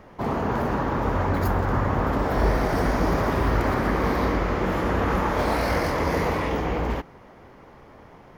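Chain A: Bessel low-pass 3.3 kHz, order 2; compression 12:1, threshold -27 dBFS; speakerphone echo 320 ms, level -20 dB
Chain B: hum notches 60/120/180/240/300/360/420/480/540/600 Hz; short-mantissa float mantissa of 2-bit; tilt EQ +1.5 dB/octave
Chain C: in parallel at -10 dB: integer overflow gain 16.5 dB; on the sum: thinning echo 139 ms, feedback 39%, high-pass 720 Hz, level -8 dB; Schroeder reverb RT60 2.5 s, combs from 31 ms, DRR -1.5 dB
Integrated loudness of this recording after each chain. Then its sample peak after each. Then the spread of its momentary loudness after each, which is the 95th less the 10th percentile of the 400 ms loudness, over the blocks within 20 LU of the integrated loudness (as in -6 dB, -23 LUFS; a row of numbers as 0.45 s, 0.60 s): -32.0 LUFS, -25.5 LUFS, -19.0 LUFS; -18.0 dBFS, -11.0 dBFS, -5.5 dBFS; 17 LU, 4 LU, 6 LU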